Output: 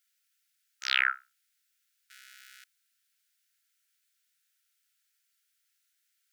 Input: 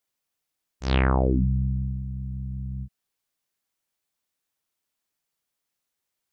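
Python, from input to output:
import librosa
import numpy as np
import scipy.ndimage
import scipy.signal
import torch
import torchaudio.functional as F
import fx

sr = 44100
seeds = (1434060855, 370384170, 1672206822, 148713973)

y = fx.zero_step(x, sr, step_db=-40.0, at=(2.1, 2.64))
y = fx.brickwall_highpass(y, sr, low_hz=1300.0)
y = y * librosa.db_to_amplitude(6.0)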